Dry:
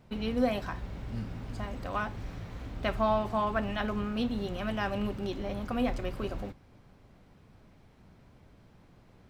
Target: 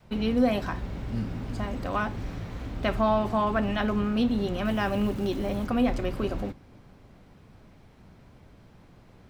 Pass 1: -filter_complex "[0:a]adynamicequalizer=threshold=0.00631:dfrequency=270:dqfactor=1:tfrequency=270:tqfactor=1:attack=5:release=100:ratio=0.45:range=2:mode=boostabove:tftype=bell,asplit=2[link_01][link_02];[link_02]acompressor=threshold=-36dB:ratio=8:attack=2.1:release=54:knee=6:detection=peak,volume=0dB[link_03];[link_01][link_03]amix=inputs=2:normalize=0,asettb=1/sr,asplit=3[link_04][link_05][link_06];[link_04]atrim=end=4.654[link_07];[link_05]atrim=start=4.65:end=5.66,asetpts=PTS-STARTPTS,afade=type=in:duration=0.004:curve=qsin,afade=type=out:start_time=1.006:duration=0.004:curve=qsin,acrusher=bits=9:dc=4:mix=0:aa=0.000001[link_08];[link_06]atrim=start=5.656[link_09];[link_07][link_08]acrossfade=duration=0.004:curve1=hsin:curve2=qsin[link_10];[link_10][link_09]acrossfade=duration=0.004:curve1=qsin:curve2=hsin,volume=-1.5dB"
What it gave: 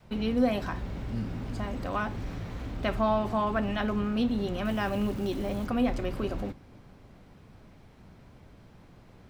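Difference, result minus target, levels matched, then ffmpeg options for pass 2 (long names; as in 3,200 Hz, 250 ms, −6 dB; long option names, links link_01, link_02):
downward compressor: peak gain reduction +9 dB
-filter_complex "[0:a]adynamicequalizer=threshold=0.00631:dfrequency=270:dqfactor=1:tfrequency=270:tqfactor=1:attack=5:release=100:ratio=0.45:range=2:mode=boostabove:tftype=bell,asplit=2[link_01][link_02];[link_02]acompressor=threshold=-25.5dB:ratio=8:attack=2.1:release=54:knee=6:detection=peak,volume=0dB[link_03];[link_01][link_03]amix=inputs=2:normalize=0,asettb=1/sr,asplit=3[link_04][link_05][link_06];[link_04]atrim=end=4.654[link_07];[link_05]atrim=start=4.65:end=5.66,asetpts=PTS-STARTPTS,afade=type=in:duration=0.004:curve=qsin,afade=type=out:start_time=1.006:duration=0.004:curve=qsin,acrusher=bits=9:dc=4:mix=0:aa=0.000001[link_08];[link_06]atrim=start=5.656[link_09];[link_07][link_08]acrossfade=duration=0.004:curve1=hsin:curve2=qsin[link_10];[link_10][link_09]acrossfade=duration=0.004:curve1=qsin:curve2=hsin,volume=-1.5dB"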